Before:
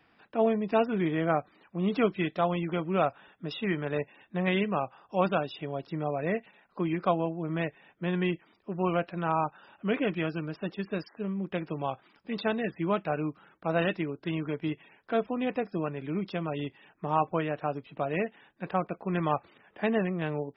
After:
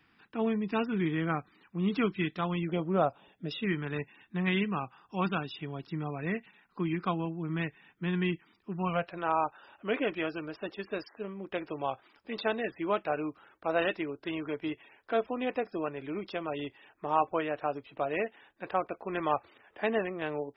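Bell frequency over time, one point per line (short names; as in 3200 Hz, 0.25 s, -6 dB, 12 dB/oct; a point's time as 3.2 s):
bell -14.5 dB 0.69 oct
2.61 s 610 Hz
2.9 s 2900 Hz
3.77 s 590 Hz
8.72 s 590 Hz
9.22 s 170 Hz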